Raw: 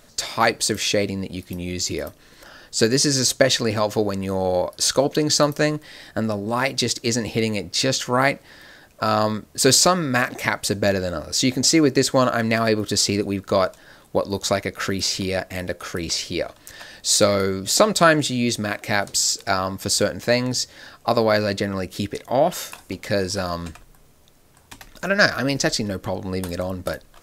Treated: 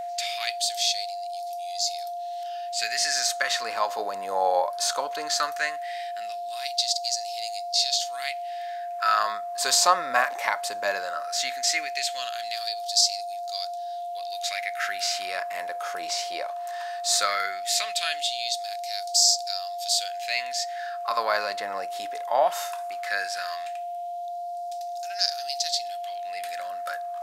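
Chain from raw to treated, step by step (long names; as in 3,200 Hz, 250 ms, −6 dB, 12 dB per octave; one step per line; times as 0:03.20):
harmonic and percussive parts rebalanced harmonic +8 dB
auto-filter high-pass sine 0.17 Hz 820–4,800 Hz
steady tone 700 Hz −22 dBFS
level −8.5 dB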